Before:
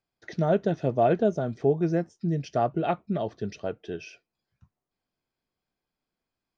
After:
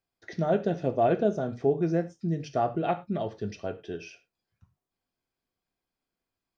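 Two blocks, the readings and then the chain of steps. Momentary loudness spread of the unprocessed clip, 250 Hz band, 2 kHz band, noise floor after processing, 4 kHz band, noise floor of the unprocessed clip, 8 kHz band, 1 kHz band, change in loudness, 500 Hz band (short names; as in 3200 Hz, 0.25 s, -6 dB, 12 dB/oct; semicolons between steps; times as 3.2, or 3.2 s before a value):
14 LU, -1.5 dB, -1.5 dB, under -85 dBFS, -1.5 dB, under -85 dBFS, n/a, -1.0 dB, -1.5 dB, -1.5 dB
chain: non-linear reverb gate 0.13 s falling, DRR 8 dB; gain -2 dB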